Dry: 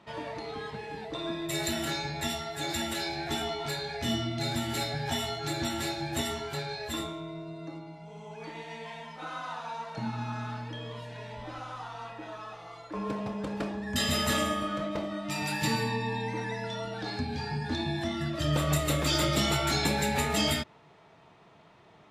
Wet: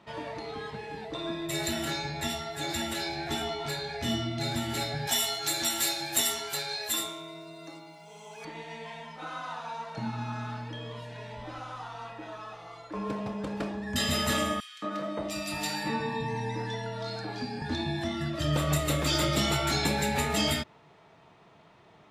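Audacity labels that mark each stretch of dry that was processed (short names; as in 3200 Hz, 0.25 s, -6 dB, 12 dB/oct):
5.070000	8.450000	RIAA curve recording
14.600000	17.620000	three bands offset in time highs, mids, lows 0.22/0.58 s, splits 160/2200 Hz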